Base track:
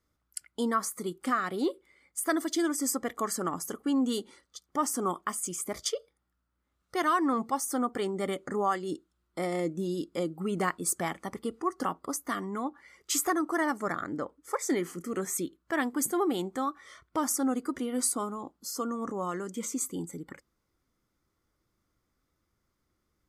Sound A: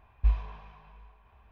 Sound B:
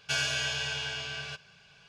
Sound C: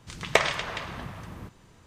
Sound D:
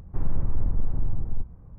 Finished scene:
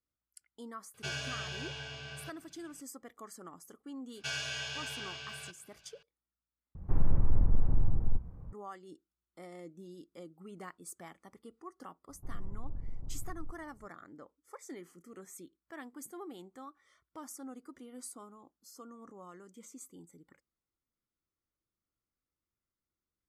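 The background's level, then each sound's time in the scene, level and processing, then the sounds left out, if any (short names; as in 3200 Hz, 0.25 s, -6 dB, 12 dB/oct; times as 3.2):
base track -17.5 dB
0.94 add B -6 dB + tilt shelf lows +4.5 dB, about 740 Hz
4.15 add B -7.5 dB
6.75 replace with D -1 dB
12.09 add D -16 dB + LPF 1100 Hz
not used: A, C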